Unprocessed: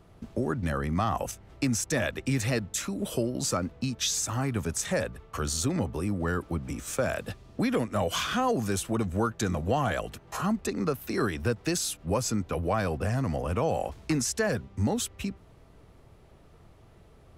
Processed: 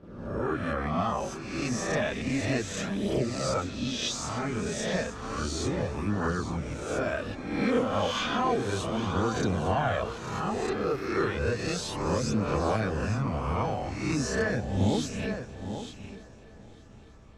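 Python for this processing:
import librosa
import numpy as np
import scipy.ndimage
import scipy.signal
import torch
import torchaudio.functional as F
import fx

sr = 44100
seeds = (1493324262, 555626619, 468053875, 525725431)

y = fx.spec_swells(x, sr, rise_s=0.92)
y = scipy.signal.sosfilt(scipy.signal.butter(2, 4800.0, 'lowpass', fs=sr, output='sos'), y)
y = y + 10.0 ** (-11.0 / 20.0) * np.pad(y, (int(846 * sr / 1000.0), 0))[:len(y)]
y = fx.chorus_voices(y, sr, voices=2, hz=0.16, base_ms=30, depth_ms=2.7, mix_pct=60)
y = fx.echo_heads(y, sr, ms=298, heads='first and third', feedback_pct=55, wet_db=-21.5)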